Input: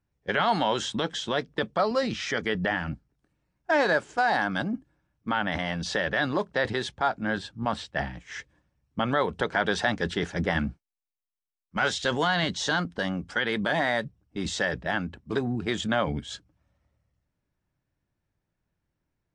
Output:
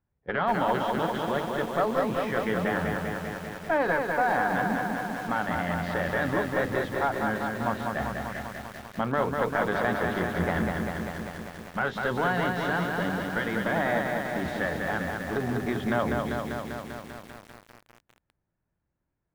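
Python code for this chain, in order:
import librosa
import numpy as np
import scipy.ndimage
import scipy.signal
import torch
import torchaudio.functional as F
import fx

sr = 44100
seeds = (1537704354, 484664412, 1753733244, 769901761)

y = fx.diode_clip(x, sr, knee_db=-20.0)
y = scipy.signal.sosfilt(scipy.signal.butter(2, 1800.0, 'lowpass', fs=sr, output='sos'), y)
y = fx.hum_notches(y, sr, base_hz=50, count=10)
y = fx.echo_crushed(y, sr, ms=197, feedback_pct=80, bits=8, wet_db=-3.5)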